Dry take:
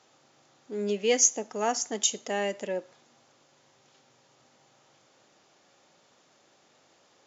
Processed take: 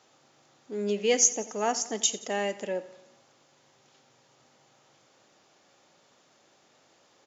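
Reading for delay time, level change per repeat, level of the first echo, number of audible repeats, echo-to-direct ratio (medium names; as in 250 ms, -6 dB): 88 ms, -5.0 dB, -18.0 dB, 4, -16.5 dB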